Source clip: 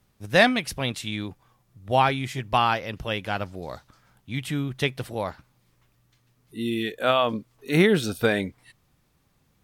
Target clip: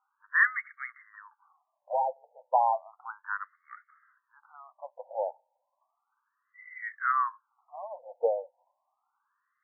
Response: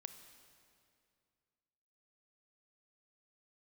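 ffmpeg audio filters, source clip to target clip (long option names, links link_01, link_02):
-filter_complex "[0:a]asettb=1/sr,asplit=3[link_01][link_02][link_03];[link_01]atrim=end=1.134[link_04];[link_02]atrim=start=1.13:end=2.25,asetpts=PTS-STARTPTS,afade=type=in:duration=0.004:curve=qsin,afade=type=out:start_time=1.116:duration=0.004:curve=qsin,volume=22.5dB,asoftclip=hard,volume=-22.5dB[link_05];[link_03]atrim=start=2.246[link_06];[link_04][link_05]acrossfade=duration=0.004:curve1=hsin:curve2=qsin[link_07];[link_07][link_06]acrossfade=duration=0.004:curve1=qsin:curve2=hsin,afftfilt=real='re*between(b*sr/1024,660*pow(1600/660,0.5+0.5*sin(2*PI*0.33*pts/sr))/1.41,660*pow(1600/660,0.5+0.5*sin(2*PI*0.33*pts/sr))*1.41)':imag='im*between(b*sr/1024,660*pow(1600/660,0.5+0.5*sin(2*PI*0.33*pts/sr))/1.41,660*pow(1600/660,0.5+0.5*sin(2*PI*0.33*pts/sr))*1.41)':win_size=1024:overlap=0.75"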